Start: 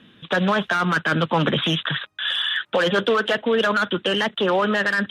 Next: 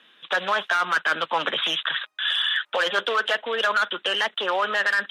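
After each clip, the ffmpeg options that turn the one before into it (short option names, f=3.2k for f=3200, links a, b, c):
-af "highpass=700"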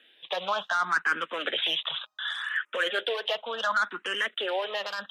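-filter_complex "[0:a]asplit=2[a][b];[b]afreqshift=0.68[c];[a][c]amix=inputs=2:normalize=1,volume=-2.5dB"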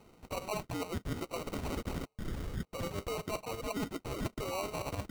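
-af "areverse,acompressor=threshold=-34dB:ratio=6,areverse,acrusher=samples=26:mix=1:aa=0.000001"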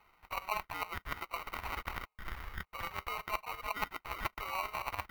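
-af "aeval=exprs='0.0596*(cos(1*acos(clip(val(0)/0.0596,-1,1)))-cos(1*PI/2))+0.0133*(cos(3*acos(clip(val(0)/0.0596,-1,1)))-cos(3*PI/2))':c=same,equalizer=f=125:t=o:w=1:g=-11,equalizer=f=250:t=o:w=1:g=-12,equalizer=f=500:t=o:w=1:g=-9,equalizer=f=1k:t=o:w=1:g=8,equalizer=f=2k:t=o:w=1:g=9,equalizer=f=8k:t=o:w=1:g=-12,equalizer=f=16k:t=o:w=1:g=7,volume=3.5dB"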